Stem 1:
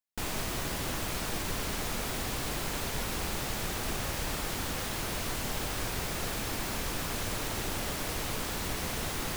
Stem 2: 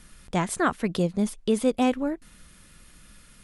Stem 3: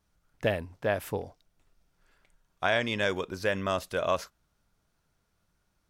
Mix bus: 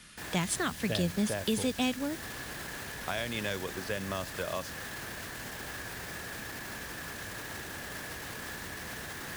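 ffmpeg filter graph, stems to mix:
-filter_complex "[0:a]equalizer=f=1.7k:w=5.6:g=13.5,alimiter=level_in=5dB:limit=-24dB:level=0:latency=1:release=26,volume=-5dB,volume=-2.5dB[a];[1:a]equalizer=f=3.1k:w=0.51:g=8.5,volume=-3dB[b];[2:a]adelay=450,volume=-3dB[c];[a][b][c]amix=inputs=3:normalize=0,highpass=62,acrossover=split=220|3000[d][e][f];[e]acompressor=threshold=-33dB:ratio=4[g];[d][g][f]amix=inputs=3:normalize=0"

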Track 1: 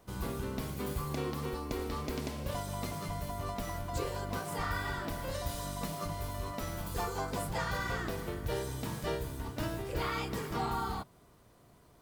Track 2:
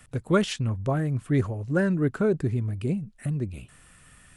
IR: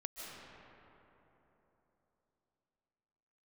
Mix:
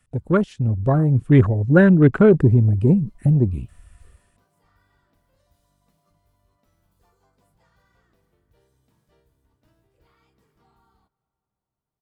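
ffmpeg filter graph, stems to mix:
-filter_complex "[0:a]adelay=50,volume=-14.5dB,afade=t=in:st=2.36:d=0.57:silence=0.473151,asplit=2[a][b];[b]volume=-16dB[c];[1:a]dynaudnorm=f=560:g=3:m=8dB,volume=2dB[d];[2:a]atrim=start_sample=2205[e];[c][e]afir=irnorm=-1:irlink=0[f];[a][d][f]amix=inputs=3:normalize=0,afwtdn=0.0398,lowshelf=f=190:g=3.5"

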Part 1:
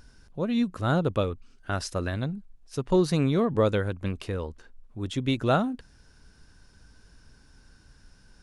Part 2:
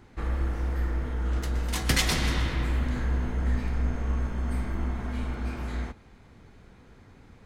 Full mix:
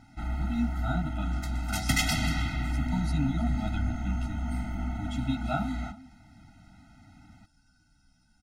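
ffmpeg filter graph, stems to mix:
-filter_complex "[0:a]asplit=2[a][b];[b]adelay=11.3,afreqshift=-2.5[c];[a][c]amix=inputs=2:normalize=1,volume=-2.5dB,asplit=2[d][e];[e]volume=-15.5dB[f];[1:a]volume=1.5dB[g];[f]aecho=0:1:323:1[h];[d][g][h]amix=inputs=3:normalize=0,lowshelf=f=65:g=-9.5,afftfilt=real='re*eq(mod(floor(b*sr/1024/310),2),0)':imag='im*eq(mod(floor(b*sr/1024/310),2),0)':win_size=1024:overlap=0.75"

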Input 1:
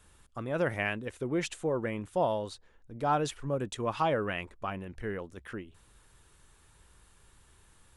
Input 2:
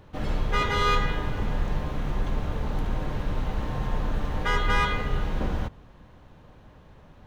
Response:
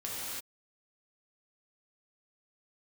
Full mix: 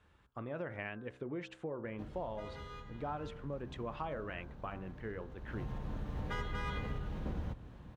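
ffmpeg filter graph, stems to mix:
-filter_complex "[0:a]lowpass=2.7k,bandreject=f=64.84:t=h:w=4,bandreject=f=129.68:t=h:w=4,bandreject=f=194.52:t=h:w=4,bandreject=f=259.36:t=h:w=4,bandreject=f=324.2:t=h:w=4,bandreject=f=389.04:t=h:w=4,bandreject=f=453.88:t=h:w=4,bandreject=f=518.72:t=h:w=4,bandreject=f=583.56:t=h:w=4,bandreject=f=648.4:t=h:w=4,bandreject=f=713.24:t=h:w=4,bandreject=f=778.08:t=h:w=4,bandreject=f=842.92:t=h:w=4,bandreject=f=907.76:t=h:w=4,bandreject=f=972.6:t=h:w=4,bandreject=f=1.03744k:t=h:w=4,bandreject=f=1.10228k:t=h:w=4,bandreject=f=1.16712k:t=h:w=4,bandreject=f=1.23196k:t=h:w=4,bandreject=f=1.2968k:t=h:w=4,bandreject=f=1.36164k:t=h:w=4,bandreject=f=1.42648k:t=h:w=4,bandreject=f=1.49132k:t=h:w=4,bandreject=f=1.55616k:t=h:w=4,bandreject=f=1.621k:t=h:w=4,bandreject=f=1.68584k:t=h:w=4,acompressor=threshold=-35dB:ratio=4,volume=-3.5dB[a];[1:a]lowshelf=f=370:g=8.5,acompressor=threshold=-24dB:ratio=6,adelay=1850,volume=-7.5dB,afade=t=in:st=5.35:d=0.49:silence=0.266073,asplit=2[b][c];[c]volume=-20.5dB[d];[2:a]atrim=start_sample=2205[e];[d][e]afir=irnorm=-1:irlink=0[f];[a][b][f]amix=inputs=3:normalize=0,highpass=49"

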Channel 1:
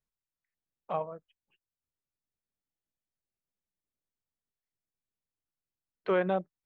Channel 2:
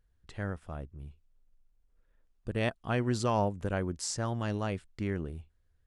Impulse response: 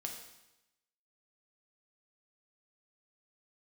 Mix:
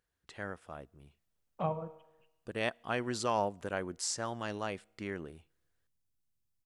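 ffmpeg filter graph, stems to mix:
-filter_complex "[0:a]bass=f=250:g=14,treble=f=4k:g=6,adelay=700,volume=-5.5dB,asplit=2[a][b];[b]volume=-4dB[c];[1:a]highpass=f=490:p=1,volume=0dB,asplit=2[d][e];[e]volume=-24dB[f];[2:a]atrim=start_sample=2205[g];[c][f]amix=inputs=2:normalize=0[h];[h][g]afir=irnorm=-1:irlink=0[i];[a][d][i]amix=inputs=3:normalize=0"

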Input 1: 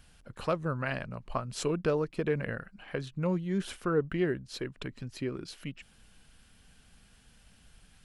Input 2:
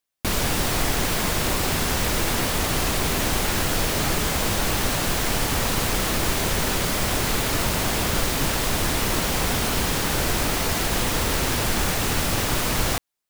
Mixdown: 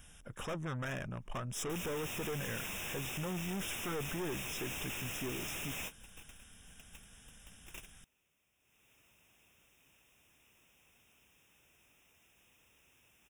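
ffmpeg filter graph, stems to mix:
-filter_complex "[0:a]volume=1.5dB,asplit=2[a][b];[1:a]highpass=50,equalizer=f=2.6k:t=o:w=0.41:g=13,adelay=1450,volume=-8.5dB,afade=t=in:st=8.58:d=0.34:silence=0.298538[c];[b]apad=whole_len=650182[d];[c][d]sidechaingate=range=-40dB:threshold=-51dB:ratio=16:detection=peak[e];[a][e]amix=inputs=2:normalize=0,highshelf=f=3.8k:g=7,aeval=exprs='(tanh(63.1*val(0)+0.3)-tanh(0.3))/63.1':c=same,asuperstop=centerf=4400:order=20:qfactor=3.3"

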